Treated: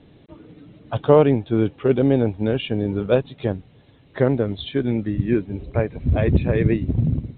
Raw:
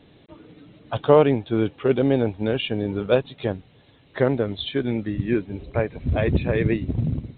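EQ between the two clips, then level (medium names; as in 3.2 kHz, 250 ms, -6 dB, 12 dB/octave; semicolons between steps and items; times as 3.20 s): distance through air 82 m; bass shelf 410 Hz +5.5 dB; -1.0 dB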